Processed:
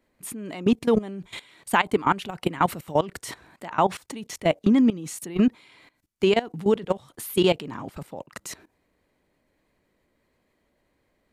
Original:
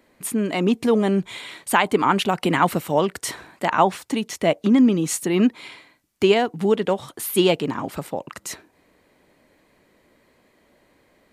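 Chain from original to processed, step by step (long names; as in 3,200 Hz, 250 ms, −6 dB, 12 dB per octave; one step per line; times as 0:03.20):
output level in coarse steps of 18 dB
low-shelf EQ 99 Hz +10 dB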